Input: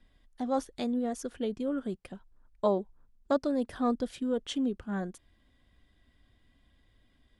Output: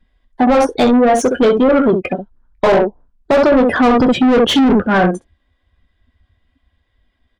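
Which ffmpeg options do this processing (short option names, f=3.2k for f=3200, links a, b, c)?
-filter_complex "[0:a]asettb=1/sr,asplit=3[a][b][c];[a]atrim=end=3.974[d];[b]atrim=start=3.97:end=4.78,asetpts=PTS-STARTPTS,afade=t=in:d=0.004:c=qsin,afade=t=out:st=0.806:d=0.004:c=qsin,equalizer=f=120:t=o:w=2.9:g=14[e];[c]atrim=start=4.776[f];[d][e]acrossfade=d=0.004:c1=hsin:c2=qsin[g];[g][f]acrossfade=d=0.004:c1=qsin:c2=hsin,aecho=1:1:12|23|66:0.299|0.335|0.398,afftdn=nr=28:nf=-47,asplit=2[h][i];[i]highpass=f=720:p=1,volume=29dB,asoftclip=type=tanh:threshold=-12dB[j];[h][j]amix=inputs=2:normalize=0,lowpass=f=2k:p=1,volume=-6dB,alimiter=level_in=15.5dB:limit=-1dB:release=50:level=0:latency=1,volume=-5dB"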